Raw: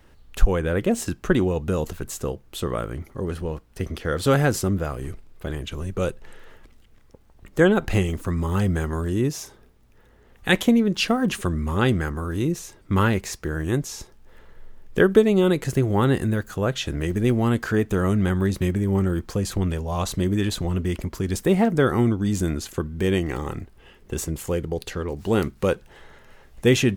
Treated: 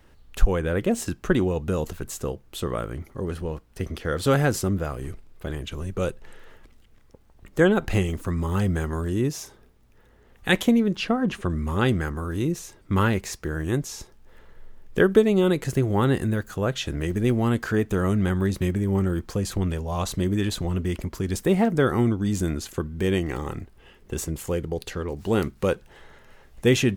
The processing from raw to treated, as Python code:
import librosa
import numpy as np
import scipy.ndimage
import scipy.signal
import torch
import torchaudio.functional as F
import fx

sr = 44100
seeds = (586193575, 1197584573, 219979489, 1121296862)

y = fx.lowpass(x, sr, hz=2200.0, slope=6, at=(10.96, 11.5))
y = y * 10.0 ** (-1.5 / 20.0)